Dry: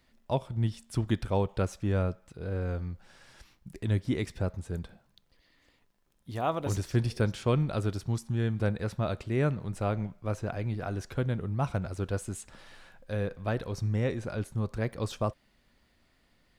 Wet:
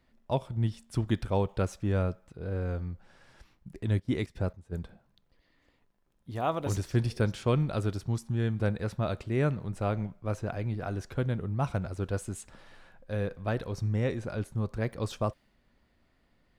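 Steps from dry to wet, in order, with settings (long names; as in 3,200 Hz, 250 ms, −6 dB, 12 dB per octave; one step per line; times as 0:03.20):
0:03.89–0:04.71: gate pattern "x.xx.xx...x" 169 BPM −12 dB
one half of a high-frequency compander decoder only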